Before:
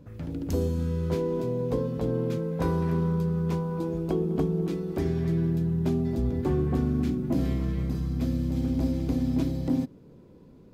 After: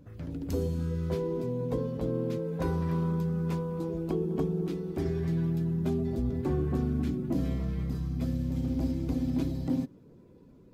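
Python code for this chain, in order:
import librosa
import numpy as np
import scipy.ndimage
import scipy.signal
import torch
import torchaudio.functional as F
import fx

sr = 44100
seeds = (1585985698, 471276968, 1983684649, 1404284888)

y = fx.spec_quant(x, sr, step_db=15)
y = F.gain(torch.from_numpy(y), -3.0).numpy()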